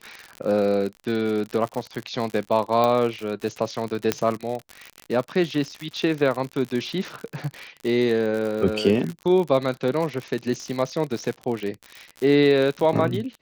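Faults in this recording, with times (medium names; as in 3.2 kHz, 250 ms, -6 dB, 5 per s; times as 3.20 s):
crackle 76 per s -27 dBFS
2.84 s: pop
4.12 s: pop -5 dBFS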